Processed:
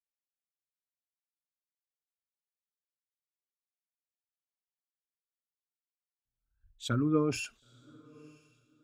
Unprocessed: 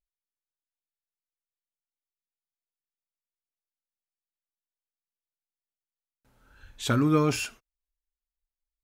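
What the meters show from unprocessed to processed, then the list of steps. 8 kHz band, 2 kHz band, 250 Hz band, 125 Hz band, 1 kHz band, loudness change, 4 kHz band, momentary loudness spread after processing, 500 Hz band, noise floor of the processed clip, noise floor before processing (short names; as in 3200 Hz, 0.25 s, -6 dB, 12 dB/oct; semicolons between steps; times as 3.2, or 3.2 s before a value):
-7.0 dB, -7.0 dB, -5.0 dB, -6.5 dB, -9.0 dB, -5.5 dB, -6.5 dB, 14 LU, -4.5 dB, under -85 dBFS, under -85 dBFS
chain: formant sharpening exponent 1.5; diffused feedback echo 0.985 s, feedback 46%, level -14.5 dB; three-band expander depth 70%; gain -8.5 dB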